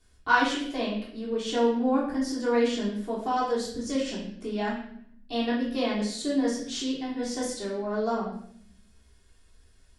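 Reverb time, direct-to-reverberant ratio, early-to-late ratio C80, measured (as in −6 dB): 0.65 s, −7.5 dB, 7.5 dB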